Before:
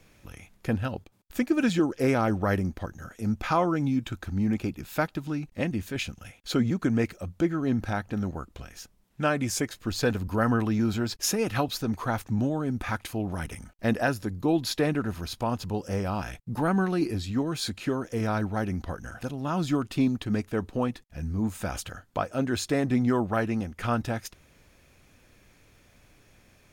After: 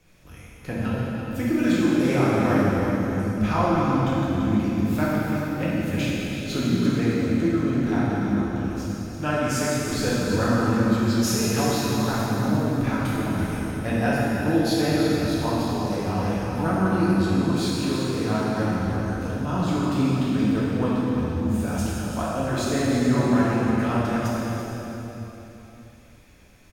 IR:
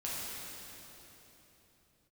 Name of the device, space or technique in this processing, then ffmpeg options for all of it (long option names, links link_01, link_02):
cave: -filter_complex "[0:a]aecho=1:1:338:0.316[link_01];[1:a]atrim=start_sample=2205[link_02];[link_01][link_02]afir=irnorm=-1:irlink=0"